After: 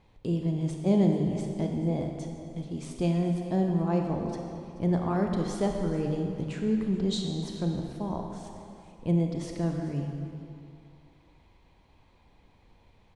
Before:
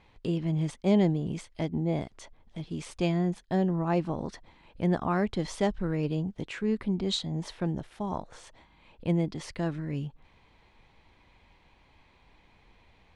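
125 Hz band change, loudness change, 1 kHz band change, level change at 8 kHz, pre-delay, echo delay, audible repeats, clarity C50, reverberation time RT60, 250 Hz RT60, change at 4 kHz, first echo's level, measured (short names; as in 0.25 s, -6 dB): +1.5 dB, +1.0 dB, -1.0 dB, -0.5 dB, 28 ms, 0.431 s, 1, 3.0 dB, 2.6 s, 2.3 s, -3.5 dB, -17.0 dB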